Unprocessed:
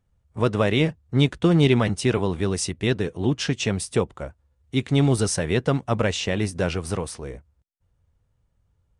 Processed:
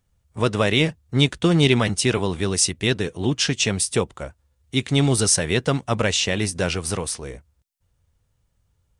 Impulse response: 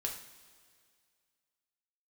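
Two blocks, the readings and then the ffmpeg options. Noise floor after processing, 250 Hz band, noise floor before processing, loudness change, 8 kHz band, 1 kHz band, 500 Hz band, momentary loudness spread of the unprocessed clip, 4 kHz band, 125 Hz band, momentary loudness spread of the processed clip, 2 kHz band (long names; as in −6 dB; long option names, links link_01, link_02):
−69 dBFS, 0.0 dB, −69 dBFS, +2.0 dB, +9.0 dB, +1.5 dB, +0.5 dB, 11 LU, +7.0 dB, 0.0 dB, 9 LU, +4.5 dB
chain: -af "highshelf=frequency=2400:gain=10"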